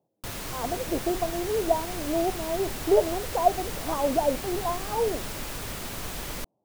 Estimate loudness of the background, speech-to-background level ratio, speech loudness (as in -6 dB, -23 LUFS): -34.5 LUFS, 6.5 dB, -28.0 LUFS